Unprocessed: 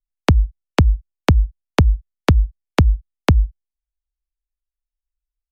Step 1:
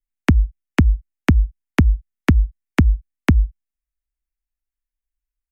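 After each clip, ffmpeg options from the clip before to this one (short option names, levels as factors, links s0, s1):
-af "equalizer=f=125:t=o:w=1:g=-4,equalizer=f=250:t=o:w=1:g=8,equalizer=f=500:t=o:w=1:g=-10,equalizer=f=1000:t=o:w=1:g=-5,equalizer=f=2000:t=o:w=1:g=6,equalizer=f=4000:t=o:w=1:g=-11"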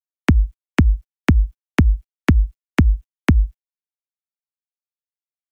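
-af "acrusher=bits=11:mix=0:aa=0.000001"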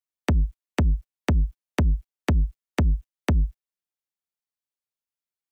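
-af "asoftclip=type=tanh:threshold=0.15"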